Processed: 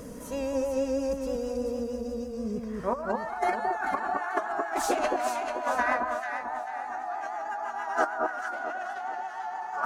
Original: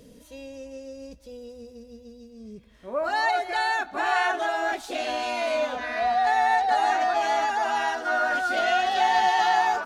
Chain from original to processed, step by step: EQ curve 480 Hz 0 dB, 1200 Hz +10 dB, 3600 Hz -11 dB, 6300 Hz +1 dB; limiter -15 dBFS, peak gain reduction 9 dB; negative-ratio compressor -30 dBFS, ratio -0.5; on a send: echo with dull and thin repeats by turns 0.22 s, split 1300 Hz, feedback 64%, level -2 dB; on the sum: vibrato 6.3 Hz 45 cents

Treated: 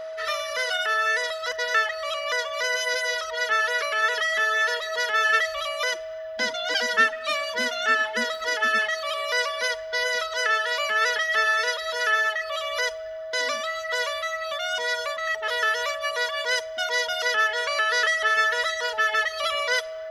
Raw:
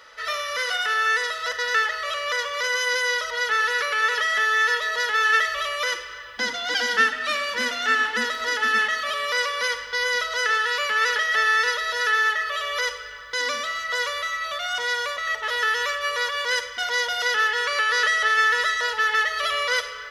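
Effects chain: reverb removal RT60 1.8 s; whine 640 Hz -32 dBFS

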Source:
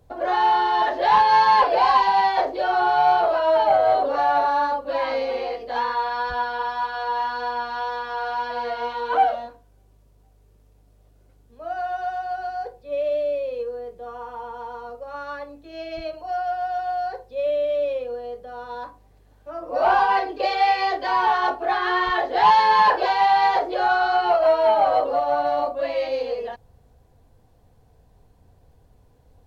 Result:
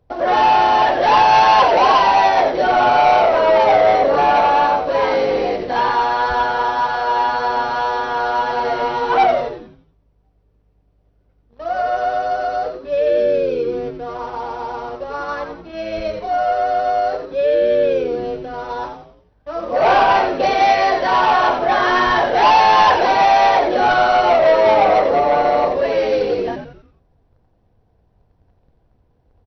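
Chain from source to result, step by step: median filter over 9 samples; sample leveller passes 2; on a send: frequency-shifting echo 88 ms, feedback 45%, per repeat -110 Hz, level -7 dB; on the sum: MP2 48 kbps 48000 Hz

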